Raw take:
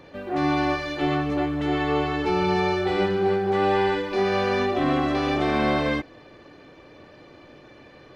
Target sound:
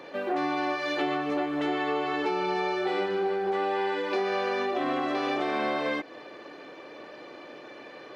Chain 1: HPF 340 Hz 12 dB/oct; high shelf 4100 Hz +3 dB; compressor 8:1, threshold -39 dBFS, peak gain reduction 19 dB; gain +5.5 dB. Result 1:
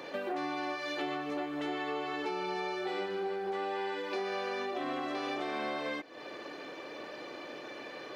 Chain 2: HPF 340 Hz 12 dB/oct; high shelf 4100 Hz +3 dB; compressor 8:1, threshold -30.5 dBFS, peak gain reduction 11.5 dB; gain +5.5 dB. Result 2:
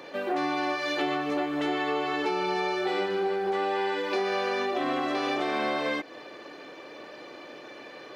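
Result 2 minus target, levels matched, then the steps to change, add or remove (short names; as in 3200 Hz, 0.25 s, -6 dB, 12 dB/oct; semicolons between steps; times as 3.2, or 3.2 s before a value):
8000 Hz band +4.5 dB
change: high shelf 4100 Hz -4 dB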